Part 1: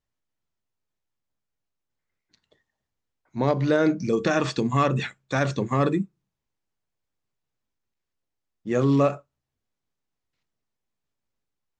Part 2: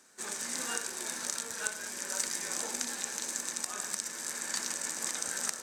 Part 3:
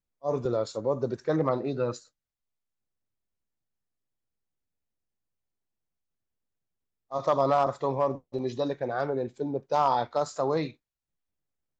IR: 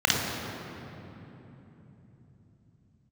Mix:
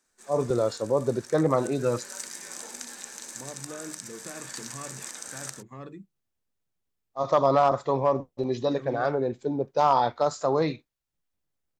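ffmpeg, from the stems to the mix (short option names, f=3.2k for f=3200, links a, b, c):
-filter_complex "[0:a]volume=-20dB[a];[1:a]volume=-4.5dB,afade=t=in:st=1.48:d=0.53:silence=0.375837[b];[2:a]adelay=50,volume=3dB[c];[a][b][c]amix=inputs=3:normalize=0"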